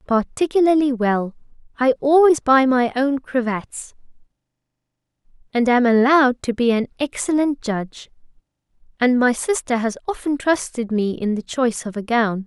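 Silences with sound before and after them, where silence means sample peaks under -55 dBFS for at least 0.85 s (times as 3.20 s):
4.26–5.25 s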